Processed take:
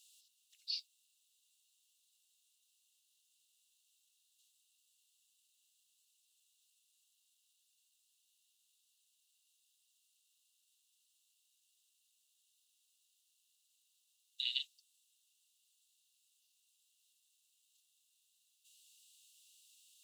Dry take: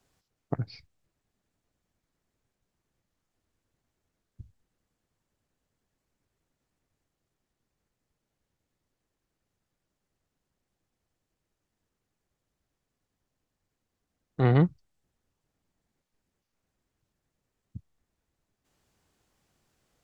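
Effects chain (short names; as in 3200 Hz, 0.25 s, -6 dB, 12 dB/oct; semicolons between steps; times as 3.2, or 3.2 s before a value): rippled Chebyshev high-pass 2700 Hz, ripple 6 dB; gain +15.5 dB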